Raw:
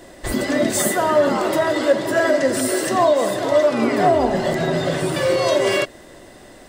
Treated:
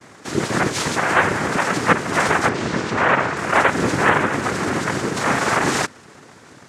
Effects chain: vibrato 0.34 Hz 27 cents; noise vocoder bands 3; 2.49–3.37 air absorption 90 m; gain -1 dB

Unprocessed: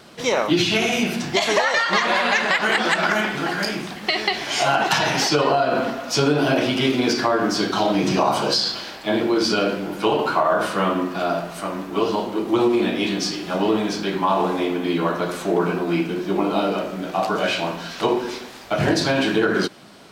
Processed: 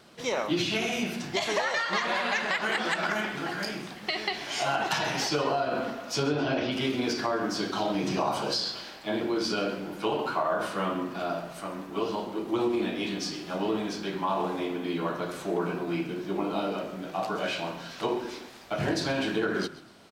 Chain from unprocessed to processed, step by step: 6.23–6.72 LPF 5600 Hz 24 dB/oct; frequency-shifting echo 0.131 s, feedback 35%, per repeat -31 Hz, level -17 dB; gain -9 dB

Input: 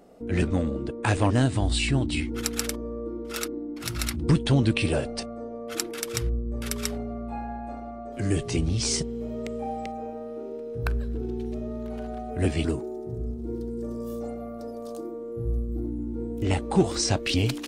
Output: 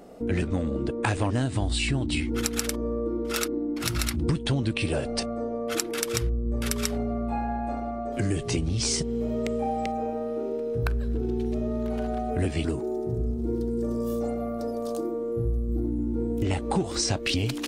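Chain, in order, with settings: compressor 6:1, threshold -29 dBFS, peak gain reduction 13.5 dB; gain +6 dB

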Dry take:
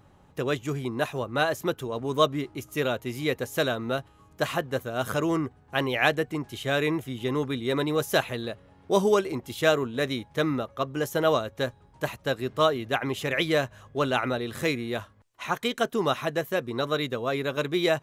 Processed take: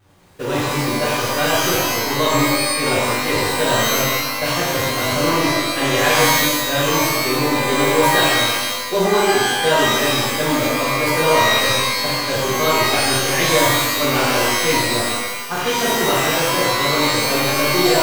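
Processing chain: zero-crossing step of -23 dBFS; gate -24 dBFS, range -28 dB; shimmer reverb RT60 1.2 s, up +12 st, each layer -2 dB, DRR -8 dB; gain -5 dB

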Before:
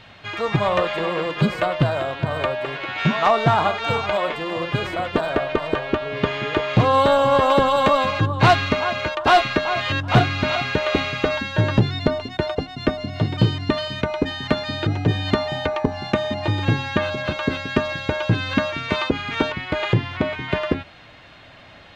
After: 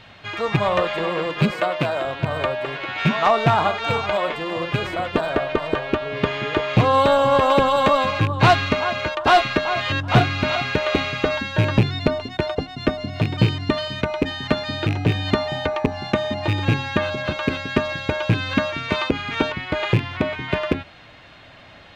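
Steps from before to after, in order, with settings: rattling part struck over -18 dBFS, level -16 dBFS; 1.51–2.05 HPF 210 Hz 12 dB/oct

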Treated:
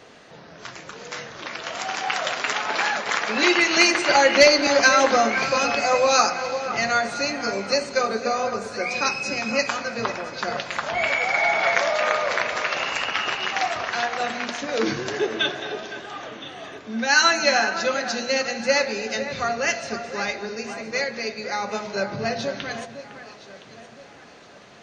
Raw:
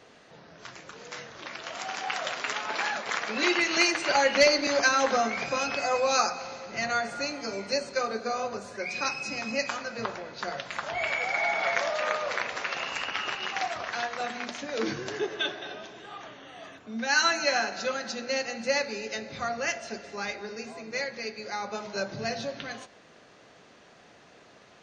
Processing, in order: 21.95–22.39 high shelf 4400 Hz -9 dB; echo with dull and thin repeats by turns 0.508 s, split 2400 Hz, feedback 58%, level -10.5 dB; gain +6.5 dB

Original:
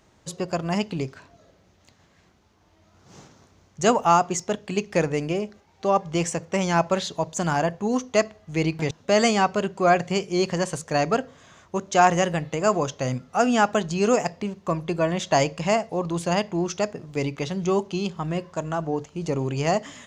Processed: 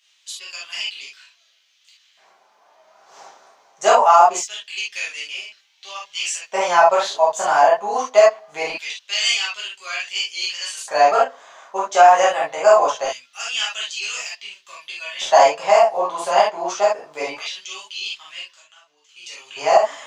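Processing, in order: 18.47–19.09 compressor 3:1, threshold -43 dBFS, peak gain reduction 16 dB; LFO high-pass square 0.23 Hz 750–3000 Hz; reverb, pre-delay 5 ms, DRR -7.5 dB; maximiser -2 dB; gain -1 dB

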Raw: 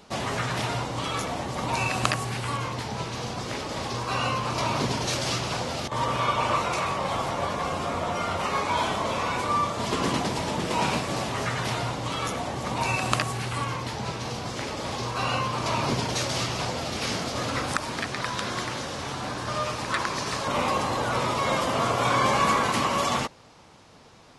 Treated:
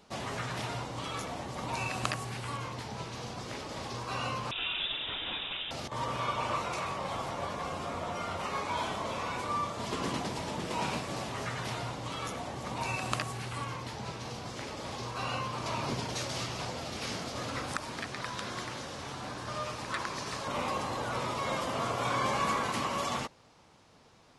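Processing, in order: 4.51–5.71 inverted band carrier 3700 Hz; gain -8 dB

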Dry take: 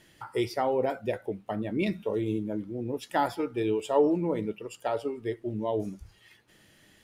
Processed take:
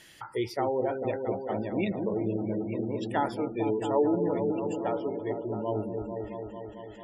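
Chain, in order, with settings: repeats that get brighter 0.223 s, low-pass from 400 Hz, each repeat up 1 oct, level -3 dB; spectral gate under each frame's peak -30 dB strong; mismatched tape noise reduction encoder only; gain -2 dB

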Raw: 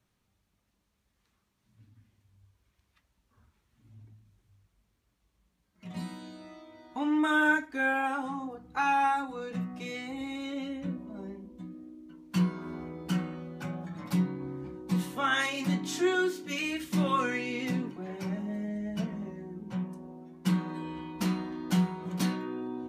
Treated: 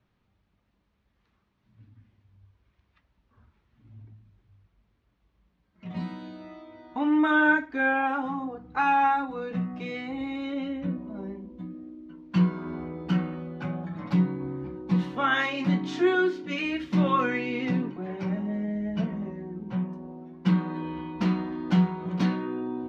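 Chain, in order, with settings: air absorption 230 m; gain +5 dB

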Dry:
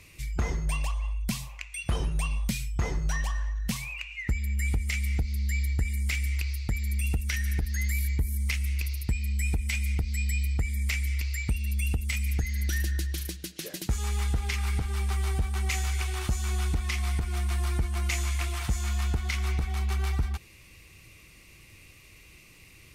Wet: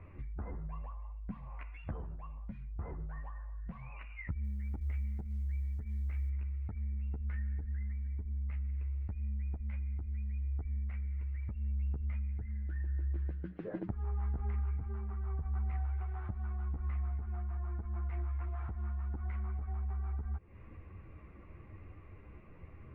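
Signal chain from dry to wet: LPF 1400 Hz 24 dB/oct; limiter -24 dBFS, peak gain reduction 7.5 dB; compressor 12:1, threshold -41 dBFS, peak gain reduction 15 dB; chorus voices 4, 0.79 Hz, delay 12 ms, depth 2.6 ms; 4.44–6.3 short-mantissa float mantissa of 6-bit; gain +6.5 dB

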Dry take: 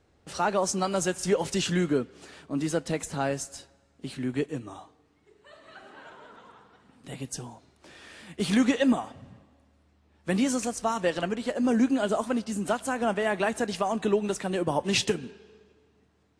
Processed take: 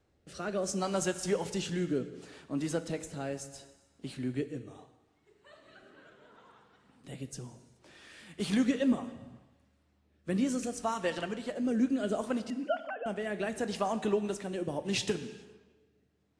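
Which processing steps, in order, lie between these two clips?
12.5–13.06 sine-wave speech; rotary speaker horn 0.7 Hz; non-linear reverb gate 0.46 s falling, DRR 11.5 dB; gain -4 dB

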